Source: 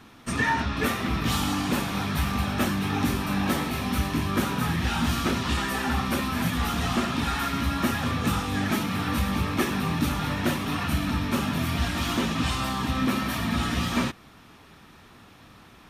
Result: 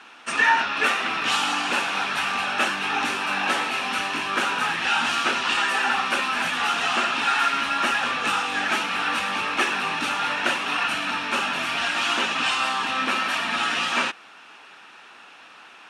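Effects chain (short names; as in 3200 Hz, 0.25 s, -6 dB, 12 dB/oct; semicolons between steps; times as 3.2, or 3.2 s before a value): speaker cabinet 500–9200 Hz, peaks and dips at 840 Hz +4 dB, 1500 Hz +8 dB, 2700 Hz +10 dB; gain +3 dB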